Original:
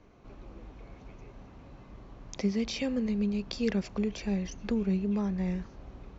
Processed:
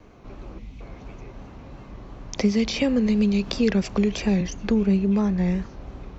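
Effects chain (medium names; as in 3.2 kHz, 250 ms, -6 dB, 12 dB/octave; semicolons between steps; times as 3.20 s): 0.59–0.81 s: time-frequency box 270–1900 Hz -12 dB; vibrato 2.9 Hz 52 cents; 2.38–4.41 s: three bands compressed up and down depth 70%; trim +8.5 dB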